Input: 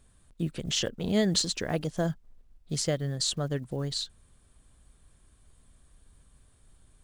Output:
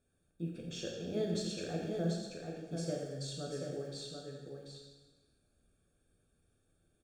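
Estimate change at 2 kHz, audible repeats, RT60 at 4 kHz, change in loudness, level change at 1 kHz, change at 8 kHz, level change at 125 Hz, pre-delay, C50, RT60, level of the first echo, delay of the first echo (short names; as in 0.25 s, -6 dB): -12.0 dB, 1, 1.2 s, -10.0 dB, -9.0 dB, -15.0 dB, -8.5 dB, 6 ms, -0.5 dB, 1.3 s, -5.5 dB, 0.737 s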